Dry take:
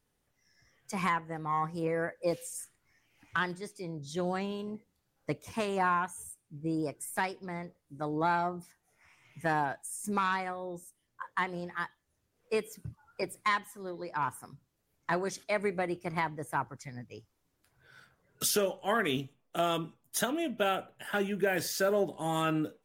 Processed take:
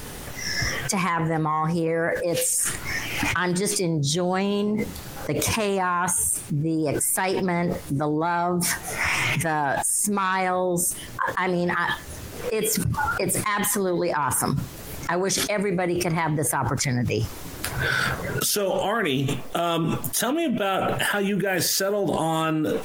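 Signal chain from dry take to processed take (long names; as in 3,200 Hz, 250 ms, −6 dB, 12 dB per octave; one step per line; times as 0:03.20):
envelope flattener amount 100%
level +1.5 dB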